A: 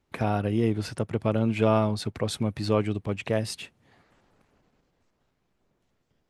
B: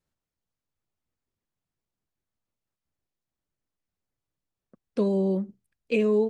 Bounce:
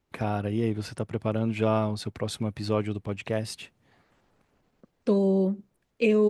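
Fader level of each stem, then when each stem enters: -2.5 dB, +1.5 dB; 0.00 s, 0.10 s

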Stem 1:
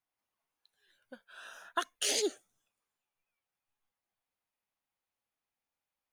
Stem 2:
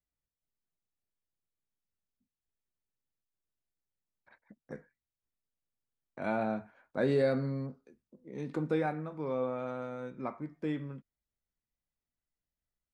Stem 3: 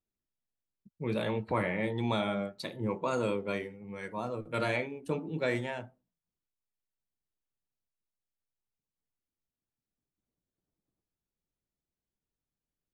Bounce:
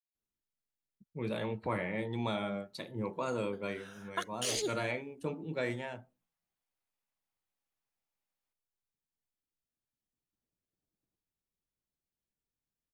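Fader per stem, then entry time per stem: -3.5 dB, mute, -4.0 dB; 2.40 s, mute, 0.15 s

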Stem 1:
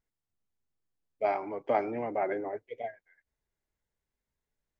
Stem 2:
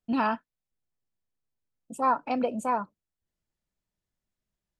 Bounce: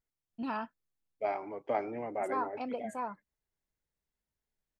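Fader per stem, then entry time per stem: -4.5 dB, -10.0 dB; 0.00 s, 0.30 s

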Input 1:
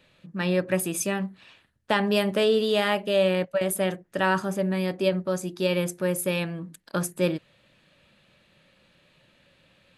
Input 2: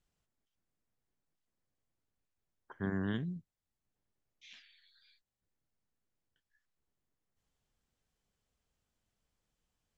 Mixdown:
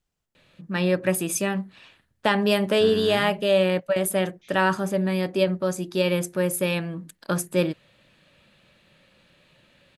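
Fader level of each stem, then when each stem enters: +2.0 dB, +2.0 dB; 0.35 s, 0.00 s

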